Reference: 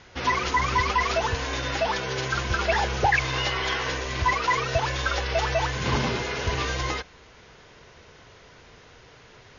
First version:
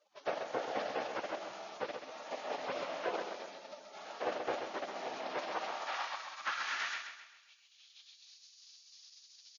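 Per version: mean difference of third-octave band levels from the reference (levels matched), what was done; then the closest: 8.5 dB: spectral gate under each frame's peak -20 dB weak; bass shelf 83 Hz -7 dB; band-pass sweep 590 Hz -> 4.8 kHz, 5.27–8.43 s; on a send: feedback delay 131 ms, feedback 42%, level -7 dB; on the sum: trim +8.5 dB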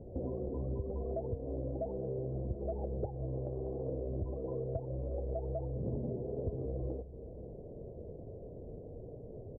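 17.5 dB: steep low-pass 620 Hz 48 dB/octave; de-hum 68.9 Hz, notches 2; compression 5:1, threshold -43 dBFS, peak gain reduction 19.5 dB; delay 543 ms -18.5 dB; trim +7 dB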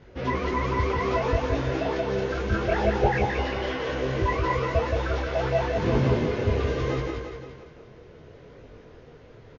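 5.5 dB: low-pass 1.6 kHz 6 dB/octave; resonant low shelf 660 Hz +6.5 dB, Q 1.5; feedback delay 173 ms, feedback 54%, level -3.5 dB; detune thickener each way 24 cents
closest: third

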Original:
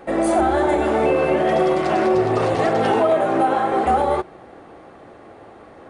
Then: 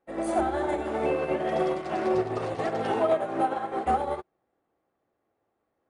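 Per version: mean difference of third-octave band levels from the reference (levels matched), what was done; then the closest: 5.0 dB: upward expansion 2.5:1, over -34 dBFS; trim -5 dB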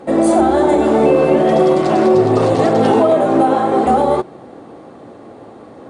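2.0 dB: graphic EQ 125/250/500/1000/4000/8000 Hz +10/+12/+7/+6/+7/+10 dB; trim -4.5 dB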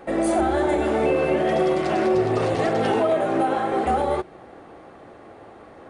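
1.0 dB: dynamic bell 990 Hz, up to -4 dB, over -31 dBFS, Q 1; trim -1.5 dB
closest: third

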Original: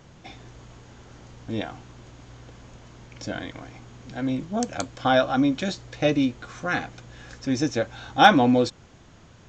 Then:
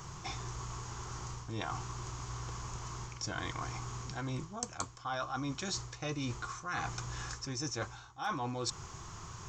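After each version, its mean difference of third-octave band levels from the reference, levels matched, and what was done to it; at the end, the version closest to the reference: 10.5 dB: FFT filter 140 Hz 0 dB, 260 Hz -13 dB, 380 Hz -1 dB, 560 Hz -12 dB, 1.1 kHz +9 dB, 1.6 kHz -3 dB, 3.7 kHz -3 dB, 5.6 kHz +7 dB; reverse; compression 12:1, threshold -39 dBFS, peak gain reduction 29.5 dB; reverse; trim +4.5 dB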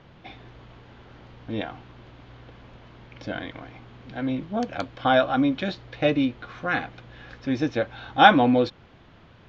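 2.0 dB: low-pass 3.9 kHz 24 dB/octave; bass shelf 320 Hz -3 dB; trim +1 dB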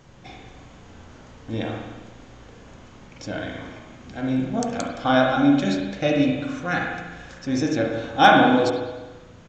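4.0 dB: on a send: delay 70 ms -23.5 dB; on the sum: spring tank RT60 1.2 s, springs 35/46 ms, chirp 70 ms, DRR -1 dB; trim -1 dB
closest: second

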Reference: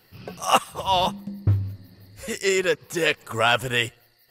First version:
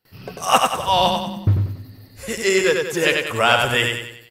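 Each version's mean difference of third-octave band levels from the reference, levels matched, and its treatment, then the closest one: 5.0 dB: gate with hold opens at -47 dBFS; on a send: feedback delay 94 ms, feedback 45%, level -4 dB; on the sum: trim +3 dB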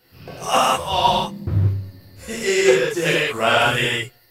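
7.0 dB: gated-style reverb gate 220 ms flat, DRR -7 dB; loudspeaker Doppler distortion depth 0.19 ms; trim -3 dB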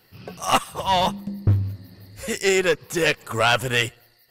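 2.0 dB: single-diode clipper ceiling -17 dBFS; level rider gain up to 4 dB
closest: third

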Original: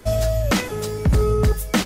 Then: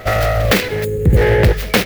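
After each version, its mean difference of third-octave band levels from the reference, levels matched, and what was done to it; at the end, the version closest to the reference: 6.0 dB: self-modulated delay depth 0.97 ms; time-frequency box 0.84–1.17 s, 550–6400 Hz -18 dB; graphic EQ 125/250/500/1000/2000/4000/8000 Hz +5/-3/+7/-6/+10/+3/-7 dB; reverse echo 114 ms -19.5 dB; trim +4 dB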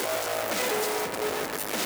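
12.0 dB: one-bit comparator; Chebyshev high-pass 380 Hz, order 2; modulation noise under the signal 14 dB; on a send: bucket-brigade echo 119 ms, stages 2048, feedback 64%, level -6 dB; on the sum: trim -7 dB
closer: first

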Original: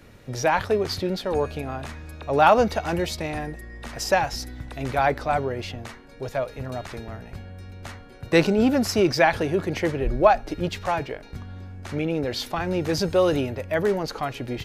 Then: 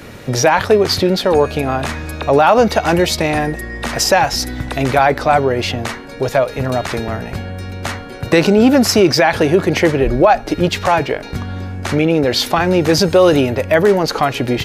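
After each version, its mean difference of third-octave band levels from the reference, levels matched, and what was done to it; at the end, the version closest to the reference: 3.5 dB: bass shelf 72 Hz -10.5 dB; in parallel at +3 dB: compression, threshold -32 dBFS, peak gain reduction 19.5 dB; on the sum: loudness maximiser +10 dB; trim -1 dB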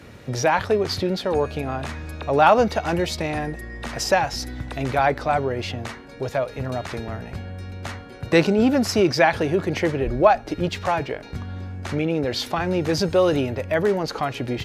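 2.0 dB: high-pass 57 Hz; treble shelf 12 kHz -9 dB; in parallel at +1 dB: compression, threshold -32 dBFS, peak gain reduction 20 dB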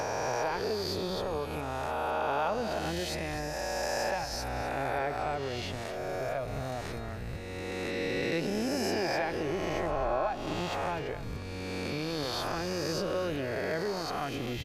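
9.5 dB: reverse spectral sustain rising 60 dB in 2.23 s; compression 3:1, threshold -26 dBFS, peak gain reduction 14 dB; on a send: delay 254 ms -13.5 dB; on the sum: trim -5.5 dB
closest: second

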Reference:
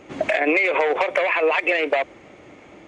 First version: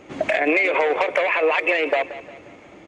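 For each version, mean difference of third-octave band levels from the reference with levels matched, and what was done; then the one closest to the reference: 1.0 dB: feedback delay 178 ms, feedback 45%, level -15 dB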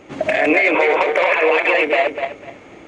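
3.5 dB: backward echo that repeats 125 ms, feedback 46%, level -2 dB; trim +2 dB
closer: first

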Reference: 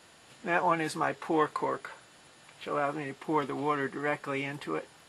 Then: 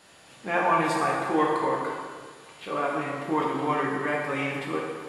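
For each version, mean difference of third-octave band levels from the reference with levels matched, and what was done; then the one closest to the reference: 5.0 dB: plate-style reverb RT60 1.7 s, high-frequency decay 0.8×, DRR -3 dB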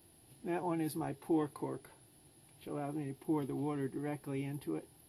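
7.5 dB: FFT filter 130 Hz 0 dB, 190 Hz -9 dB, 340 Hz -3 dB, 530 Hz -17 dB, 790 Hz -12 dB, 1.2 kHz -25 dB, 2.4 kHz -19 dB, 5 kHz -14 dB, 7.8 kHz -27 dB, 11 kHz +5 dB; trim +3 dB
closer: first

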